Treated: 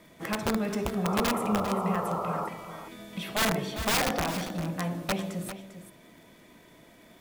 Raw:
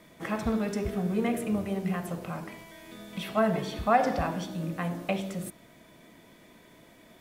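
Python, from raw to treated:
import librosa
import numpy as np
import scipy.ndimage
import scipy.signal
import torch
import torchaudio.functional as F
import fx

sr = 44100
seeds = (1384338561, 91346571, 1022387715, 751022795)

p1 = (np.mod(10.0 ** (20.0 / 20.0) * x + 1.0, 2.0) - 1.0) / 10.0 ** (20.0 / 20.0)
p2 = fx.spec_paint(p1, sr, seeds[0], shape='noise', start_s=1.04, length_s=1.45, low_hz=400.0, high_hz=1400.0, level_db=-33.0)
p3 = fx.dmg_crackle(p2, sr, seeds[1], per_s=57.0, level_db=-49.0)
y = p3 + fx.echo_single(p3, sr, ms=398, db=-11.5, dry=0)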